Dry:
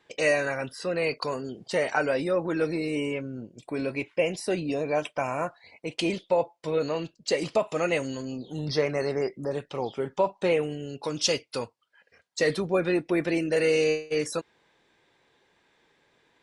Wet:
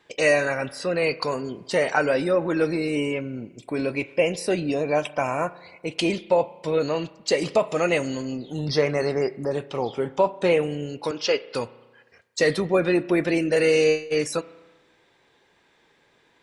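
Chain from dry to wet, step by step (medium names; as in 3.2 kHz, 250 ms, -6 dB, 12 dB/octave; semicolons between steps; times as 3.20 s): 11.11–11.55 s: cabinet simulation 340–4500 Hz, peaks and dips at 420 Hz +6 dB, 1.5 kHz +5 dB, 3.7 kHz -8 dB; spring tank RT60 1.2 s, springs 34 ms, chirp 60 ms, DRR 17 dB; trim +4 dB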